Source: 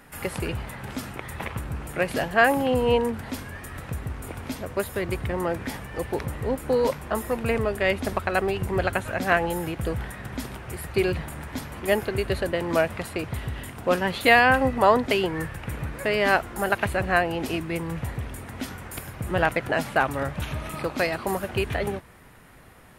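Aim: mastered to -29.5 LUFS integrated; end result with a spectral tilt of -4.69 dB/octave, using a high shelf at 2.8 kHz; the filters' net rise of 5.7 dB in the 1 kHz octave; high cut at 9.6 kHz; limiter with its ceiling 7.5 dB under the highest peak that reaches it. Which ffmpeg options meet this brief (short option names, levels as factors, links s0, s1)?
-af "lowpass=9600,equalizer=f=1000:t=o:g=7,highshelf=f=2800:g=6,volume=0.562,alimiter=limit=0.224:level=0:latency=1"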